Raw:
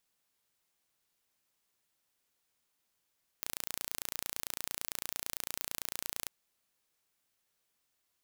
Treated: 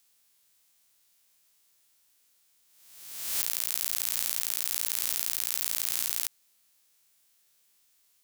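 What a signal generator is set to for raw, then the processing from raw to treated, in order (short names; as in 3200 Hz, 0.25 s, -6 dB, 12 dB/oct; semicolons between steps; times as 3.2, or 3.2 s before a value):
pulse train 28.9/s, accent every 0, -9 dBFS 2.87 s
spectral swells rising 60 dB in 1.12 s; high shelf 2400 Hz +11 dB; limiter -2 dBFS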